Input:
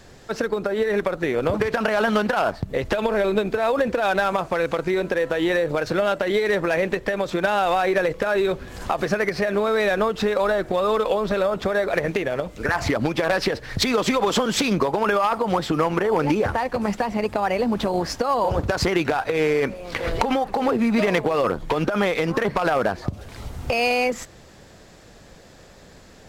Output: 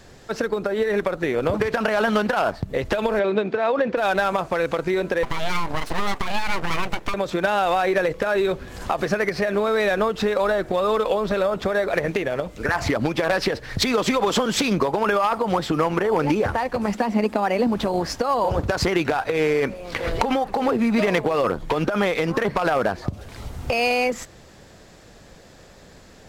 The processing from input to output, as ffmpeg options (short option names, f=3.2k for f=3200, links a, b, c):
-filter_complex "[0:a]asettb=1/sr,asplit=3[a][b][c];[a]atrim=end=3.194[d];[b]atrim=start=3.19:end=3.97,asetpts=PTS-STARTPTS,afade=t=in:d=0.004:c=qsin,afade=t=out:st=0.776:d=0.004:c=qsin,highpass=150,lowpass=3.7k[e];[c]atrim=start=3.966[f];[d][e]acrossfade=d=0.004:c1=hsin:c2=qsin[g];[g][f]acrossfade=d=0.004:c1=qsin:c2=hsin,asettb=1/sr,asplit=3[h][i][j];[h]atrim=end=5.234[k];[i]atrim=start=5.23:end=7.14,asetpts=PTS-STARTPTS,afade=t=in:d=0.004:c=qsin,afade=t=out:st=1.906:d=0.004:c=qsin,aeval=exprs='abs(val(0))':c=same[l];[j]atrim=start=7.136[m];[k][l]acrossfade=d=0.004:c1=hsin:c2=qsin[n];[n][m]acrossfade=d=0.004:c1=qsin:c2=hsin,asettb=1/sr,asplit=3[o][p][q];[o]atrim=end=16.944[r];[p]atrim=start=16.94:end=17.67,asetpts=PTS-STARTPTS,afade=t=in:d=0.004:c=qsin,afade=t=out:st=0.726:d=0.004:c=qsin,lowshelf=f=170:t=q:w=3:g=-8[s];[q]atrim=start=17.666[t];[r][s]acrossfade=d=0.004:c1=hsin:c2=qsin[u];[u][t]acrossfade=d=0.004:c1=qsin:c2=hsin"